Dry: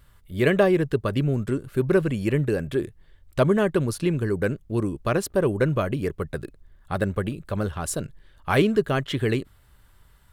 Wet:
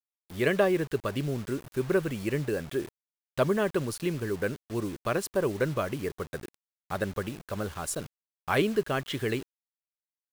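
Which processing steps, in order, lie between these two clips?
low shelf 250 Hz -7 dB; bit-crush 7-bit; gain -3.5 dB

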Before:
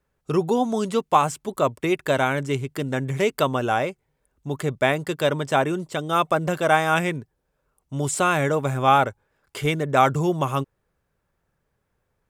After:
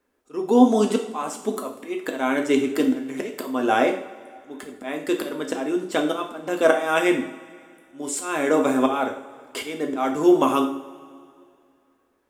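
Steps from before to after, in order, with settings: auto swell 0.379 s; resonant low shelf 190 Hz -11.5 dB, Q 3; two-slope reverb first 0.52 s, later 2.4 s, from -18 dB, DRR 2 dB; gain +2 dB

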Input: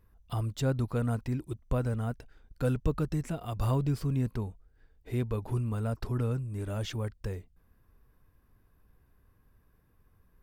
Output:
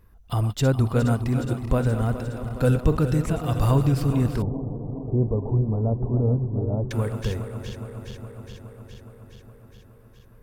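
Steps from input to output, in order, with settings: regenerating reverse delay 0.208 s, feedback 83%, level -10.5 dB; 4.42–6.91 steep low-pass 870 Hz 36 dB/oct; gain +8 dB

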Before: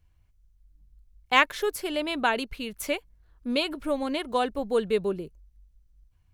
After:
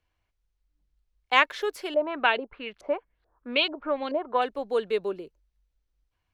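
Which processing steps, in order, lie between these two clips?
three-band isolator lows -16 dB, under 300 Hz, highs -13 dB, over 5700 Hz; 1.94–4.42 LFO low-pass saw up 2.3 Hz 560–4400 Hz

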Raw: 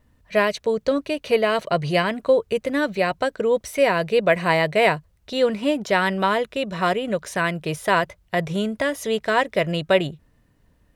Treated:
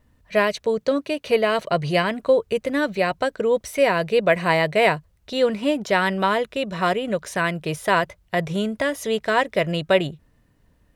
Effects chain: 0.83–1.25 HPF 110 Hz

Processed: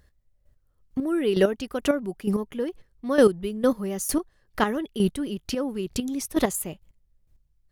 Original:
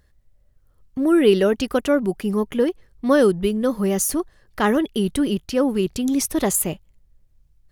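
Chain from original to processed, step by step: chopper 2.2 Hz, depth 65%, duty 20%

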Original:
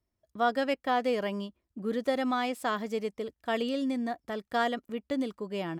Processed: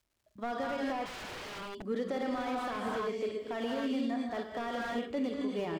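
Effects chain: LPF 7400 Hz 12 dB/oct; doubler 43 ms -12.5 dB; bands offset in time lows, highs 30 ms, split 160 Hz; non-linear reverb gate 0.3 s rising, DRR 1.5 dB; limiter -23.5 dBFS, peak gain reduction 10 dB; 1.05–1.83 wrapped overs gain 35 dB; crackle 450/s -63 dBFS; slew limiter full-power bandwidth 27 Hz; gain -1.5 dB

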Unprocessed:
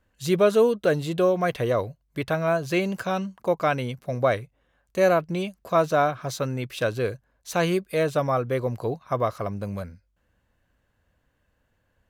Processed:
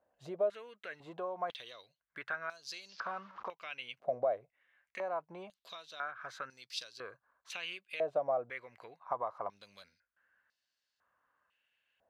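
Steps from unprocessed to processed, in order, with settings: 2.89–3.48 delta modulation 32 kbps, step -40 dBFS; compressor 5:1, threshold -31 dBFS, peak gain reduction 15.5 dB; stepped band-pass 2 Hz 670–4800 Hz; gain +6 dB

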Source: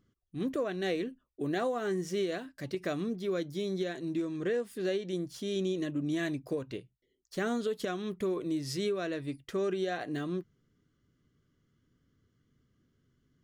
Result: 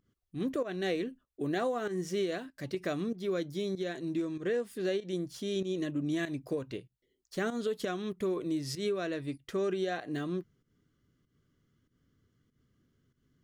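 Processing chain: pump 96 bpm, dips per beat 1, -13 dB, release 0.147 s

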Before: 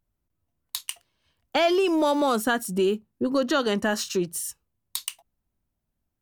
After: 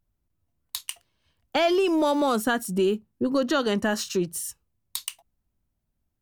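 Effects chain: low shelf 190 Hz +4.5 dB; gain -1 dB

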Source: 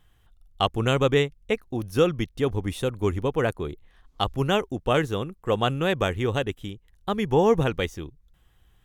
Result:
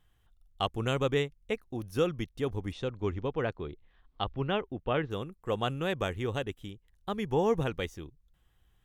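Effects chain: 2.71–5.1 LPF 6000 Hz -> 3100 Hz 24 dB/oct; gain -7.5 dB

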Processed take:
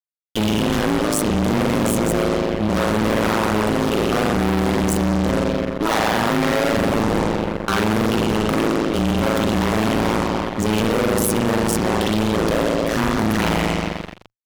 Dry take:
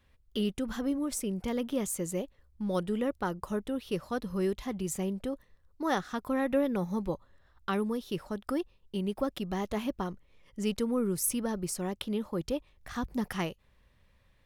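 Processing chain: spring tank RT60 1.7 s, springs 42 ms, chirp 25 ms, DRR -6 dB; fuzz box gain 38 dB, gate -44 dBFS; AM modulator 110 Hz, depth 95%

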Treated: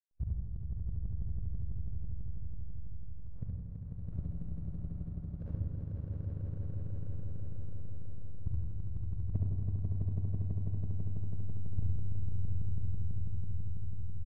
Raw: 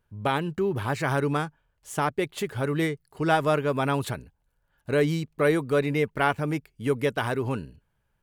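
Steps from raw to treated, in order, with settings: steep low-pass 1100 Hz 72 dB/oct; resonant low shelf 260 Hz +8.5 dB, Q 1.5; in parallel at +1.5 dB: compressor, threshold -28 dBFS, peak gain reduction 12.5 dB; on the sum: flipped gate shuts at -18 dBFS, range -40 dB; backlash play -42.5 dBFS; doubler 41 ms -3.5 dB; swelling echo 95 ms, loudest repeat 5, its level -3 dB; on a send at -4 dB: reverb RT60 0.95 s, pre-delay 24 ms; on the sum: speed mistake 78 rpm record played at 45 rpm; gain -6.5 dB

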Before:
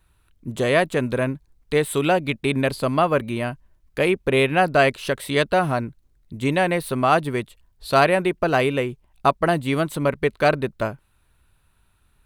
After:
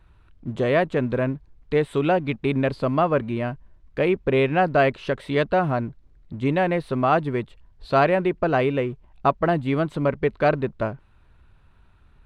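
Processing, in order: G.711 law mismatch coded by mu; tape spacing loss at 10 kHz 24 dB

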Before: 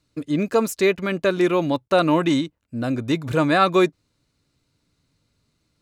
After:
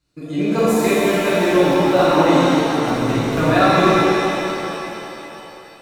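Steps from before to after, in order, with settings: crackling interface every 0.23 s, samples 1024, zero, from 0.59; shimmer reverb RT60 3.3 s, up +7 st, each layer -8 dB, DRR -11.5 dB; gain -6.5 dB

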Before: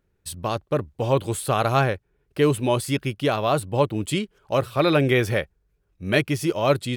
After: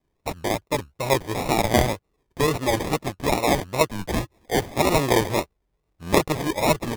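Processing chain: tilt shelf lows -6 dB, about 650 Hz; sample-and-hold 30×; 3.88–4.6 frequency shift -97 Hz; wow and flutter 140 cents

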